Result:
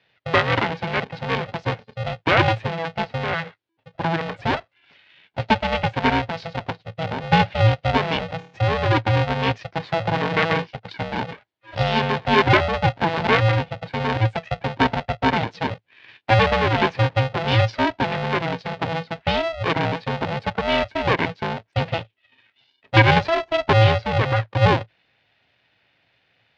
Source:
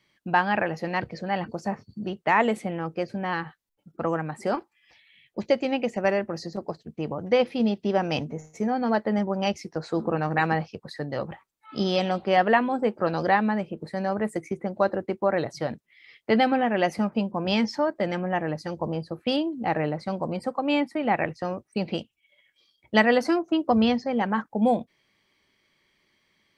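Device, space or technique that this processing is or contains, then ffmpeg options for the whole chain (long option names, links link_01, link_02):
ring modulator pedal into a guitar cabinet: -af "aeval=exprs='val(0)*sgn(sin(2*PI*330*n/s))':channel_layout=same,highpass=86,equalizer=frequency=110:width_type=q:width=4:gain=7,equalizer=frequency=210:width_type=q:width=4:gain=-4,equalizer=frequency=500:width_type=q:width=4:gain=-3,equalizer=frequency=1200:width_type=q:width=4:gain=-6,lowpass=frequency=3900:width=0.5412,lowpass=frequency=3900:width=1.3066,volume=5.5dB"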